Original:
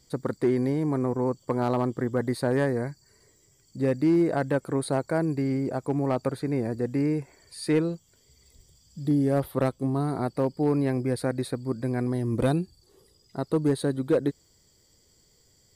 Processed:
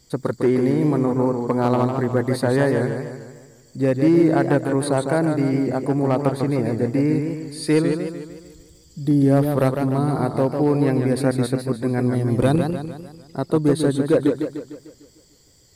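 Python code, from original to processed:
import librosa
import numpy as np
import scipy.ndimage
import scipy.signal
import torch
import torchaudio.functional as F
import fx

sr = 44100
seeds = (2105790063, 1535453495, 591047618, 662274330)

y = fx.echo_warbled(x, sr, ms=150, feedback_pct=49, rate_hz=2.8, cents=122, wet_db=-6)
y = y * librosa.db_to_amplitude(5.5)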